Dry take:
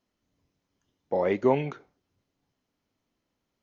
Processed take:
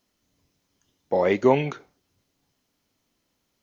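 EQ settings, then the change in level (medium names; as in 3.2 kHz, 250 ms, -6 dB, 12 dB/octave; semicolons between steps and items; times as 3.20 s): treble shelf 3.4 kHz +9.5 dB; +4.0 dB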